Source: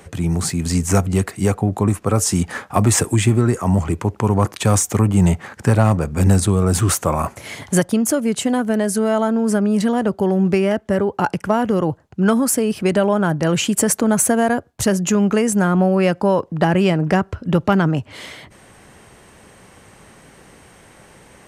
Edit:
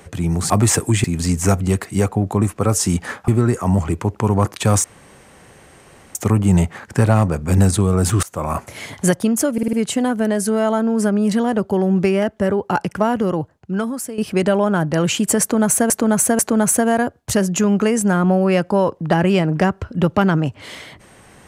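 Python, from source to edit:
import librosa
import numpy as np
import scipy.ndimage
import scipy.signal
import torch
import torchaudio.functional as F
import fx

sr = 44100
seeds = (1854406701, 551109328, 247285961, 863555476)

y = fx.edit(x, sr, fx.move(start_s=2.74, length_s=0.54, to_s=0.5),
    fx.insert_room_tone(at_s=4.84, length_s=1.31),
    fx.fade_in_from(start_s=6.92, length_s=0.34, floor_db=-23.0),
    fx.stutter(start_s=8.22, slice_s=0.05, count=5),
    fx.fade_out_to(start_s=11.58, length_s=1.09, floor_db=-13.0),
    fx.repeat(start_s=13.9, length_s=0.49, count=3), tone=tone)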